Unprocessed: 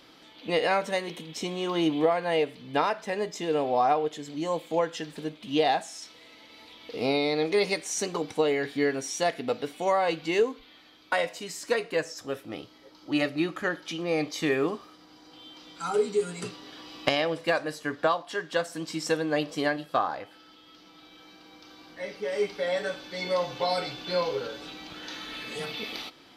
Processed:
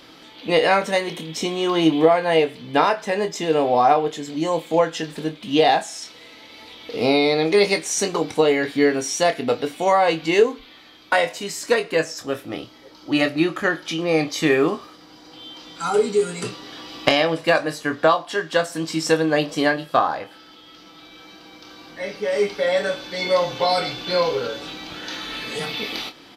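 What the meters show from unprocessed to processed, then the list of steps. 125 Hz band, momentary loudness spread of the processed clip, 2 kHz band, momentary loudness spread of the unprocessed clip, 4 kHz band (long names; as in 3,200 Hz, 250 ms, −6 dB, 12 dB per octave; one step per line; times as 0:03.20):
+8.0 dB, 14 LU, +8.0 dB, 14 LU, +8.0 dB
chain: double-tracking delay 25 ms −9 dB
level +7.5 dB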